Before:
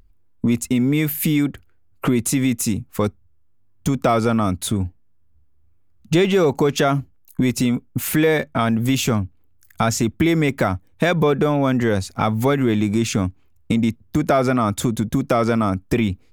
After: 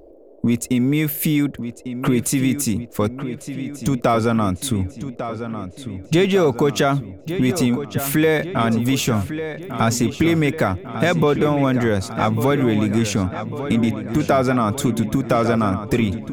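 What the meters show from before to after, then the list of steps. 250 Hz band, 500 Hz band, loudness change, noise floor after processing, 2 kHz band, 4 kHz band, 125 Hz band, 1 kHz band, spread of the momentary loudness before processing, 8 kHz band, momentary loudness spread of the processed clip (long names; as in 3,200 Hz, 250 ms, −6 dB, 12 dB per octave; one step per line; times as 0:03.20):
+0.5 dB, +0.5 dB, 0.0 dB, −43 dBFS, +0.5 dB, +0.5 dB, +0.5 dB, +0.5 dB, 7 LU, 0.0 dB, 10 LU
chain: on a send: feedback echo with a low-pass in the loop 1,149 ms, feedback 60%, low-pass 4,500 Hz, level −10 dB
on the sum: noise in a band 290–620 Hz −47 dBFS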